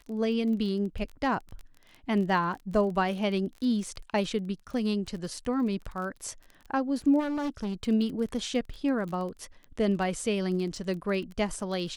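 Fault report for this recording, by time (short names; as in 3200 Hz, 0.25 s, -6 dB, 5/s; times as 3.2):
crackle 23/s -36 dBFS
7.19–7.84 clipped -28 dBFS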